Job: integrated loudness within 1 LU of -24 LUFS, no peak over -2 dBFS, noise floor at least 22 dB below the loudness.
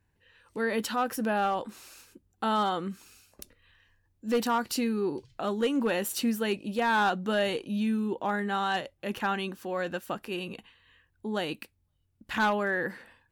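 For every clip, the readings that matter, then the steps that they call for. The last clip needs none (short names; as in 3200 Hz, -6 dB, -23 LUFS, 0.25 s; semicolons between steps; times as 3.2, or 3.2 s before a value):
clipped 0.5%; flat tops at -20.0 dBFS; loudness -30.0 LUFS; peak -20.0 dBFS; loudness target -24.0 LUFS
-> clip repair -20 dBFS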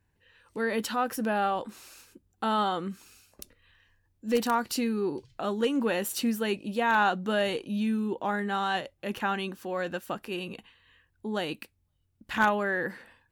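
clipped 0.0%; loudness -29.5 LUFS; peak -11.0 dBFS; loudness target -24.0 LUFS
-> gain +5.5 dB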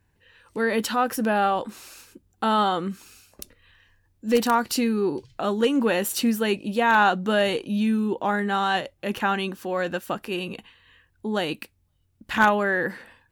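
loudness -24.0 LUFS; peak -5.5 dBFS; noise floor -67 dBFS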